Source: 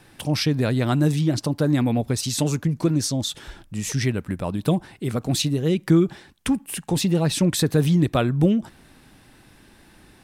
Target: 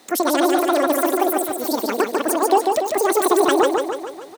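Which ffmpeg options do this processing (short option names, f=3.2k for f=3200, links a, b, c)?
-af "highpass=100,aecho=1:1:340|680|1020|1360|1700|2040|2380:0.631|0.341|0.184|0.0994|0.0537|0.029|0.0156,asetrate=103194,aresample=44100,volume=2dB"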